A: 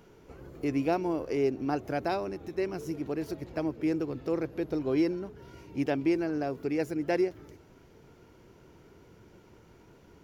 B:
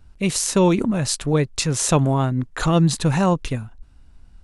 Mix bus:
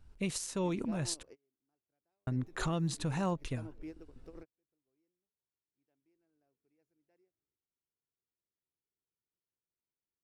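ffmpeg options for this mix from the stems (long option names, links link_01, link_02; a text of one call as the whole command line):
ffmpeg -i stem1.wav -i stem2.wav -filter_complex "[0:a]volume=-8.5dB,afade=type=in:start_time=5.78:duration=0.59:silence=0.375837[link_01];[1:a]volume=-10dB,asplit=3[link_02][link_03][link_04];[link_02]atrim=end=1.23,asetpts=PTS-STARTPTS,afade=type=out:start_time=1.226:duration=0.004:curve=hsin[link_05];[link_03]atrim=start=1.23:end=2.27,asetpts=PTS-STARTPTS,volume=0[link_06];[link_04]atrim=start=2.27,asetpts=PTS-STARTPTS,afade=type=in:duration=0.004:curve=hsin[link_07];[link_05][link_06][link_07]concat=n=3:v=0:a=1,asplit=2[link_08][link_09];[link_09]apad=whole_len=451420[link_10];[link_01][link_10]sidechaingate=range=-40dB:threshold=-54dB:ratio=16:detection=peak[link_11];[link_11][link_08]amix=inputs=2:normalize=0,alimiter=level_in=1dB:limit=-24dB:level=0:latency=1:release=418,volume=-1dB" out.wav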